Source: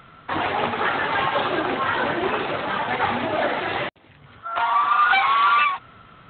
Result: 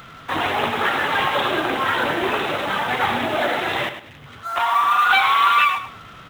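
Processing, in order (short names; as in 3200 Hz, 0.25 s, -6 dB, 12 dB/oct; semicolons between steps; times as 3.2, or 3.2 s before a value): G.711 law mismatch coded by mu; high shelf 3800 Hz +10 dB; feedback echo 0.104 s, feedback 23%, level -10 dB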